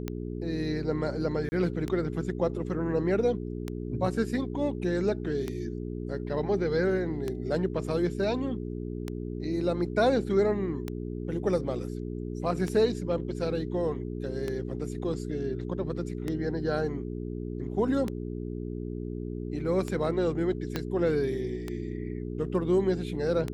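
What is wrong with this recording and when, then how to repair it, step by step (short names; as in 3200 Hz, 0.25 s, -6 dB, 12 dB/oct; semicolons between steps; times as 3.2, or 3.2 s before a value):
hum 60 Hz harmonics 7 -35 dBFS
tick 33 1/3 rpm -18 dBFS
1.49–1.52 gap 30 ms
20.76 pop -15 dBFS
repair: de-click; de-hum 60 Hz, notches 7; interpolate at 1.49, 30 ms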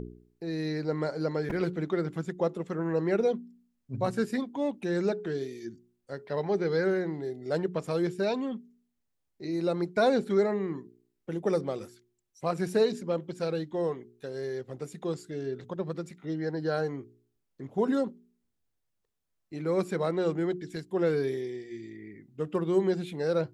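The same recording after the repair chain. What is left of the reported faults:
20.76 pop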